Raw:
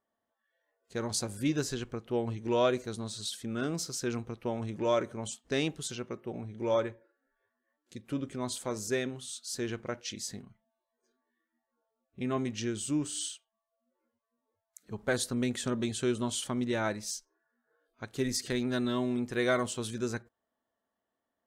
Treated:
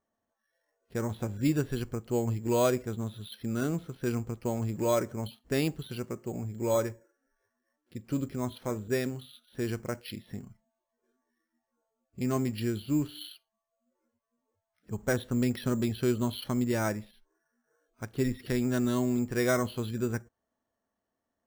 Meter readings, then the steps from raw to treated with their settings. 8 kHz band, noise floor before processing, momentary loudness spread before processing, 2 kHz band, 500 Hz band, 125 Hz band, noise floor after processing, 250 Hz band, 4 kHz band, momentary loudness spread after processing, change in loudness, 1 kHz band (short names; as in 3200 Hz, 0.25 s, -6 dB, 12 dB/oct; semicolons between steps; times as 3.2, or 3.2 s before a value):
-5.0 dB, under -85 dBFS, 10 LU, -1.0 dB, +1.0 dB, +6.0 dB, -85 dBFS, +3.0 dB, -4.5 dB, 11 LU, +2.0 dB, 0.0 dB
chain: low shelf 190 Hz +8.5 dB; careless resampling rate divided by 6×, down filtered, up hold